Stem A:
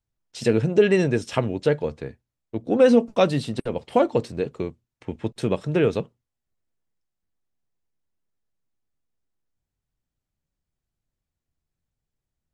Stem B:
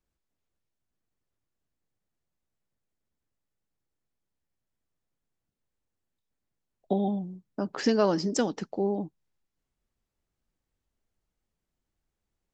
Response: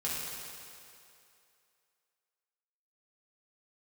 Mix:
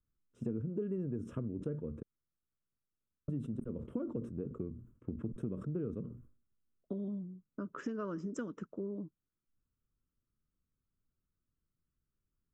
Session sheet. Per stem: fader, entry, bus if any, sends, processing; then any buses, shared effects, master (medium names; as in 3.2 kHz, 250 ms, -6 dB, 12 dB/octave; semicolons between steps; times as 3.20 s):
-4.5 dB, 0.00 s, muted 2.03–3.28 s, no send, FFT filter 150 Hz 0 dB, 230 Hz +4 dB, 1.9 kHz -17 dB; decay stretcher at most 120 dB/s
-6.0 dB, 0.00 s, no send, none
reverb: none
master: resonant high shelf 1.6 kHz -6.5 dB, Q 3; static phaser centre 1.9 kHz, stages 4; compression 4:1, threshold -36 dBFS, peak gain reduction 13.5 dB